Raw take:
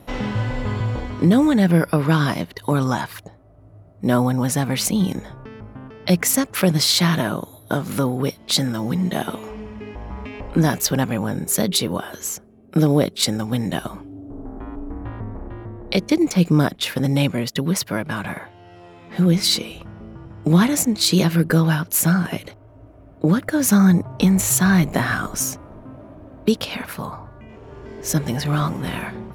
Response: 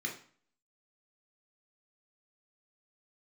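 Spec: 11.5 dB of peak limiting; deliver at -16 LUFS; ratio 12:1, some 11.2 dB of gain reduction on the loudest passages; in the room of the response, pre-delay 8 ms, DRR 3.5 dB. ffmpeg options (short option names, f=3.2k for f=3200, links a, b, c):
-filter_complex "[0:a]acompressor=threshold=-22dB:ratio=12,alimiter=limit=-19dB:level=0:latency=1,asplit=2[a][b];[1:a]atrim=start_sample=2205,adelay=8[c];[b][c]afir=irnorm=-1:irlink=0,volume=-6dB[d];[a][d]amix=inputs=2:normalize=0,volume=12dB"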